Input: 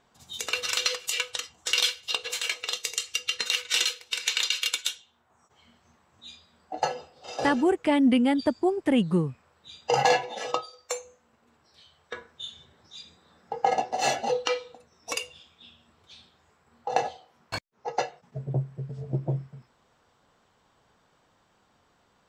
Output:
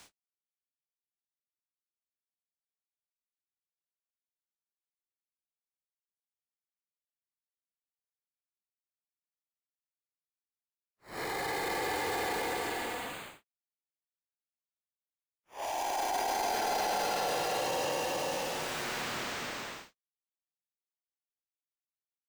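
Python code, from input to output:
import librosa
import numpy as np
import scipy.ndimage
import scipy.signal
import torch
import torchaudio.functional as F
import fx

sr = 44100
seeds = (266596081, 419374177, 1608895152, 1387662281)

y = np.where(np.abs(x) >= 10.0 ** (-24.0 / 20.0), x, 0.0)
y = fx.paulstretch(y, sr, seeds[0], factor=43.0, window_s=0.05, from_s=17.6)
y = fx.transient(y, sr, attack_db=-10, sustain_db=4)
y = fx.band_squash(y, sr, depth_pct=100)
y = F.gain(torch.from_numpy(y), -4.5).numpy()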